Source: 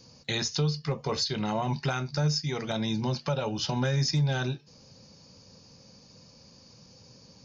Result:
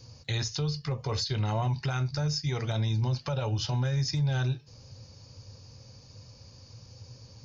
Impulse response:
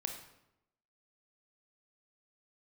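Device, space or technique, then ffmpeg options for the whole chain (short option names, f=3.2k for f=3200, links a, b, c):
car stereo with a boomy subwoofer: -af "lowshelf=f=140:t=q:w=3:g=7.5,alimiter=limit=-21.5dB:level=0:latency=1:release=127"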